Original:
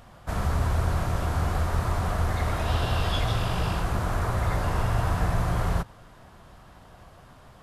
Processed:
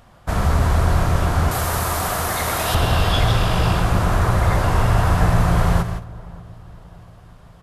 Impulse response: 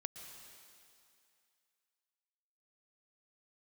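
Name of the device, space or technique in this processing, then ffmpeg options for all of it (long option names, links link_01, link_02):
keyed gated reverb: -filter_complex "[0:a]asettb=1/sr,asplit=3[link_01][link_02][link_03];[link_01]atrim=end=1.514[link_04];[link_02]atrim=start=1.51:end=2.75,asetpts=PTS-STARTPTS,afade=type=in:duration=0.004:curve=qsin,afade=type=out:start_time=1.236:duration=0.004:curve=qsin,aemphasis=mode=production:type=bsi[link_05];[link_03]atrim=start=2.746[link_06];[link_04][link_05]acrossfade=duration=0.004:curve1=hsin:curve2=qsin[link_07];[link_07][link_06]acrossfade=duration=0.004:curve1=qsin:curve2=hsin,asplit=3[link_08][link_09][link_10];[1:a]atrim=start_sample=2205[link_11];[link_09][link_11]afir=irnorm=-1:irlink=0[link_12];[link_10]apad=whole_len=336464[link_13];[link_12][link_13]sidechaingate=range=-33dB:threshold=-44dB:ratio=16:detection=peak,volume=7.5dB[link_14];[link_08][link_14]amix=inputs=2:normalize=0,asplit=2[link_15][link_16];[link_16]adelay=583,lowpass=frequency=910:poles=1,volume=-20dB,asplit=2[link_17][link_18];[link_18]adelay=583,lowpass=frequency=910:poles=1,volume=0.55,asplit=2[link_19][link_20];[link_20]adelay=583,lowpass=frequency=910:poles=1,volume=0.55,asplit=2[link_21][link_22];[link_22]adelay=583,lowpass=frequency=910:poles=1,volume=0.55[link_23];[link_15][link_17][link_19][link_21][link_23]amix=inputs=5:normalize=0"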